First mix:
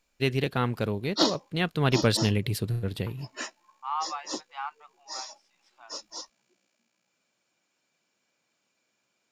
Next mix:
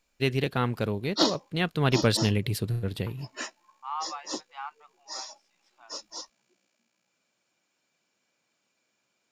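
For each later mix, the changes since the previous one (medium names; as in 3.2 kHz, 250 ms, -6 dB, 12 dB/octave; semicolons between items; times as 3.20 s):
second voice -3.0 dB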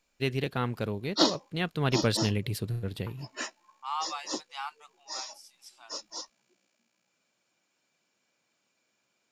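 first voice -3.5 dB; second voice: remove low-pass 1.9 kHz 12 dB/octave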